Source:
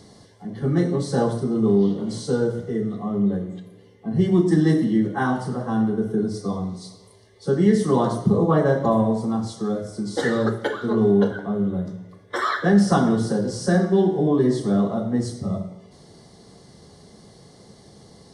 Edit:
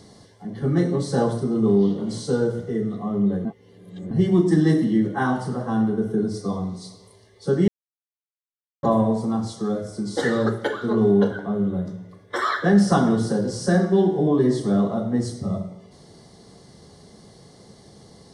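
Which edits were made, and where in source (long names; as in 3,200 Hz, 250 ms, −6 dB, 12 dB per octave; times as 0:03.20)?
0:03.45–0:04.11: reverse
0:07.68–0:08.83: silence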